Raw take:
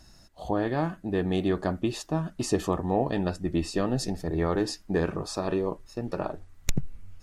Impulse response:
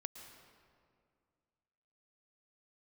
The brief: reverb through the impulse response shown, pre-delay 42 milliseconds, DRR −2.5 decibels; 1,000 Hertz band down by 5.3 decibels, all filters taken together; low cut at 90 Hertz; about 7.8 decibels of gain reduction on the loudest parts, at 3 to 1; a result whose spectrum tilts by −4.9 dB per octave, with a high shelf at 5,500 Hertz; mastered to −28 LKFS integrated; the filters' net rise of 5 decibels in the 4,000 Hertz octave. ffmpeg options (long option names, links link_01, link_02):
-filter_complex "[0:a]highpass=90,equalizer=frequency=1000:width_type=o:gain=-8,equalizer=frequency=4000:width_type=o:gain=4.5,highshelf=frequency=5500:gain=4.5,acompressor=threshold=-32dB:ratio=3,asplit=2[link_01][link_02];[1:a]atrim=start_sample=2205,adelay=42[link_03];[link_02][link_03]afir=irnorm=-1:irlink=0,volume=6dB[link_04];[link_01][link_04]amix=inputs=2:normalize=0,volume=3dB"